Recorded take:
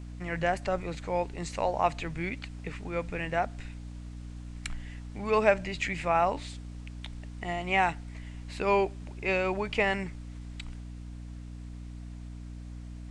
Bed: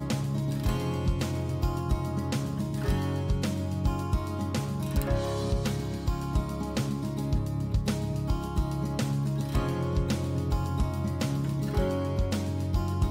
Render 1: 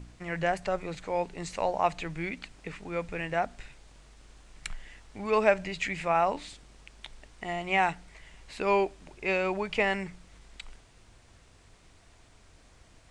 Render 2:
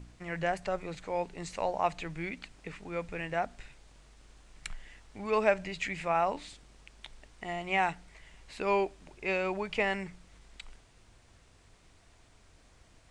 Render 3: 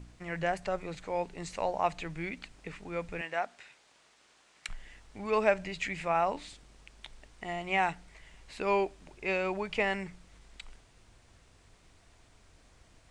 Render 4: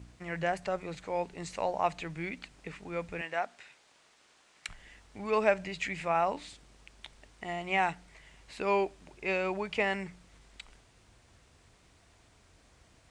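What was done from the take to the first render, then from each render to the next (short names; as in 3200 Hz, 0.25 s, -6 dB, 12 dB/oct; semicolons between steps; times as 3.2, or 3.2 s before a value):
de-hum 60 Hz, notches 5
gain -3 dB
3.21–4.69 weighting filter A
HPF 45 Hz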